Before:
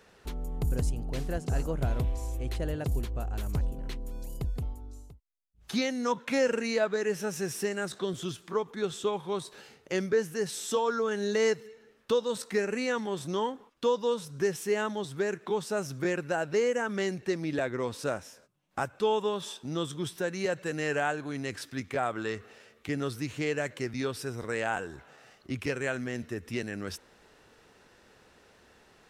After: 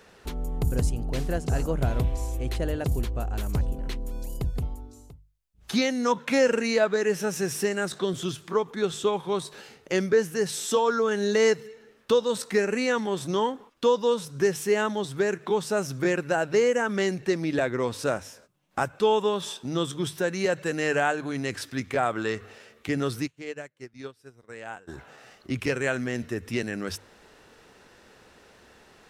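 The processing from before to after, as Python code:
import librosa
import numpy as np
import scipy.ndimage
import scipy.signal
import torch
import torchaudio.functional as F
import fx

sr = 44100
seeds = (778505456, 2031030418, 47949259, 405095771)

y = fx.hum_notches(x, sr, base_hz=50, count=3)
y = fx.upward_expand(y, sr, threshold_db=-47.0, expansion=2.5, at=(23.26, 24.87), fade=0.02)
y = y * 10.0 ** (5.0 / 20.0)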